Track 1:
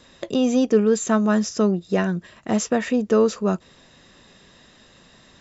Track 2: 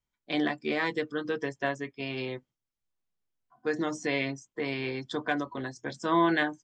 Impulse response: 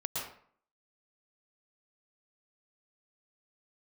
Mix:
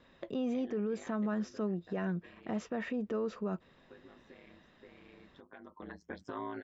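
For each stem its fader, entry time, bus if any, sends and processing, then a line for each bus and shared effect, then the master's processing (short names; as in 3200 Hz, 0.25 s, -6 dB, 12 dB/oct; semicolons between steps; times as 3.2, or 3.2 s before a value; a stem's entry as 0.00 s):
-9.5 dB, 0.00 s, no send, dry
-0.5 dB, 0.25 s, no send, compressor 6:1, threshold -35 dBFS, peak gain reduction 14.5 dB; ring modulator 52 Hz; auto duck -15 dB, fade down 1.80 s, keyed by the first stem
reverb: off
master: LPF 2600 Hz 12 dB/oct; bell 83 Hz -2.5 dB; limiter -27.5 dBFS, peak gain reduction 11 dB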